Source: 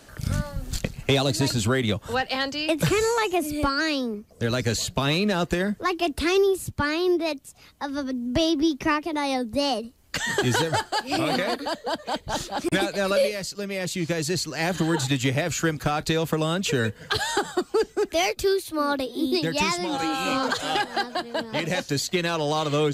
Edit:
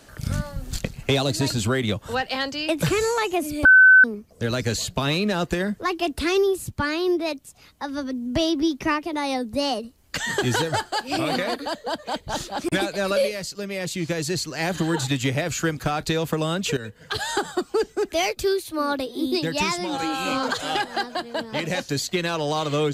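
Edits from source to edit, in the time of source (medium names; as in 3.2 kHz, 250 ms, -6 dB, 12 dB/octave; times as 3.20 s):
3.65–4.04 s: bleep 1.52 kHz -8 dBFS
16.77–17.33 s: fade in, from -14 dB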